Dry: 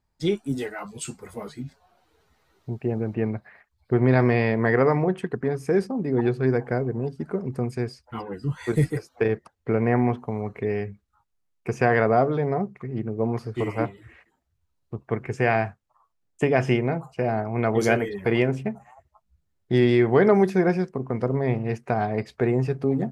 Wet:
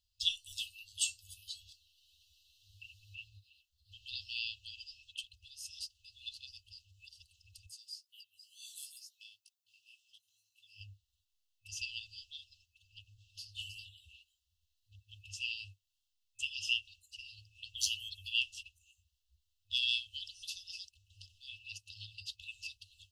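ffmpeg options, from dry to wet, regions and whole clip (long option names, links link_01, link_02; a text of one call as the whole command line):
ffmpeg -i in.wav -filter_complex "[0:a]asettb=1/sr,asplit=3[link_01][link_02][link_03];[link_01]atrim=end=7.664[link_04];[link_02]atrim=start=7.66:end=10.81,asetpts=PTS-STARTPTS,afade=type=in:duration=0.004:curve=qsin,afade=type=out:start_time=3.146:duration=0.004:curve=qsin,aderivative,flanger=delay=15.5:depth=5.3:speed=2.1[link_05];[link_03]atrim=start=10.806[link_06];[link_04][link_05]acrossfade=duration=0.004:curve1=hsin:curve2=qsin[link_07];[link_07][link_06]acrossfade=duration=0.004:curve1=qsin:curve2=hsin,aemphasis=mode=production:type=75kf,afftfilt=real='re*(1-between(b*sr/4096,100,2600))':imag='im*(1-between(b*sr/4096,100,2600))':win_size=4096:overlap=0.75,acrossover=split=440 4900:gain=0.251 1 0.112[link_08][link_09][link_10];[link_08][link_09][link_10]amix=inputs=3:normalize=0,volume=3dB" out.wav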